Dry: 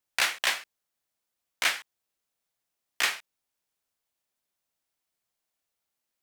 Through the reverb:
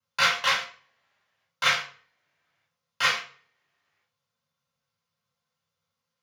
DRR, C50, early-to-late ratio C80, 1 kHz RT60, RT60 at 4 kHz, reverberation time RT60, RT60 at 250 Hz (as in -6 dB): -8.0 dB, 9.0 dB, 13.5 dB, 0.45 s, 0.35 s, 0.45 s, 0.50 s